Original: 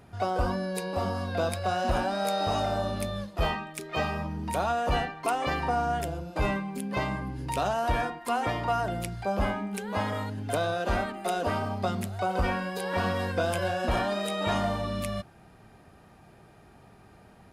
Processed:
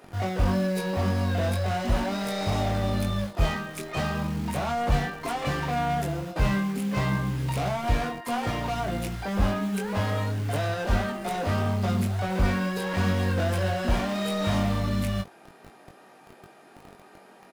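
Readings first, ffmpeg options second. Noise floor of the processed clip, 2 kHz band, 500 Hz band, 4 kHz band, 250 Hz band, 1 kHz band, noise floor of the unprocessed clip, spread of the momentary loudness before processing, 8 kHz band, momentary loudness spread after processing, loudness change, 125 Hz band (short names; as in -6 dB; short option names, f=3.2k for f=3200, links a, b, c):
-53 dBFS, +1.0 dB, -0.5 dB, +1.5 dB, +5.5 dB, -1.5 dB, -55 dBFS, 5 LU, +0.5 dB, 4 LU, +2.5 dB, +7.0 dB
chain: -filter_complex "[0:a]equalizer=f=130:w=3.5:g=5,acrossover=split=240[a][b];[a]acrusher=bits=7:mix=0:aa=0.000001[c];[b]asoftclip=type=tanh:threshold=-33dB[d];[c][d]amix=inputs=2:normalize=0,asplit=2[e][f];[f]adelay=21,volume=-4.5dB[g];[e][g]amix=inputs=2:normalize=0,volume=4dB"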